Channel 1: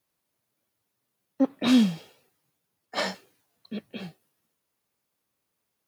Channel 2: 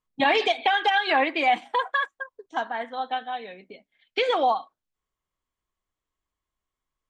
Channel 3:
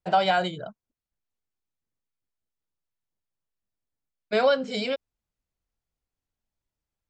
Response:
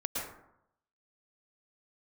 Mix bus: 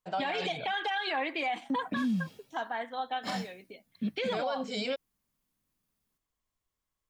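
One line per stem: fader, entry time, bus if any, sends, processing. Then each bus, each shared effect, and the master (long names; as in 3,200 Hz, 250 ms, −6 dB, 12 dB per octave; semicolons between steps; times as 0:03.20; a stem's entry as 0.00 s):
−7.5 dB, 0.30 s, no send, low shelf with overshoot 320 Hz +9 dB, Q 1.5; downward compressor 2 to 1, threshold −19 dBFS, peak gain reduction 7.5 dB
−4.5 dB, 0.00 s, no send, no processing
−11.0 dB, 0.00 s, no send, automatic gain control gain up to 7.5 dB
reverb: not used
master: high-shelf EQ 5,900 Hz +5.5 dB; brickwall limiter −24 dBFS, peak gain reduction 12.5 dB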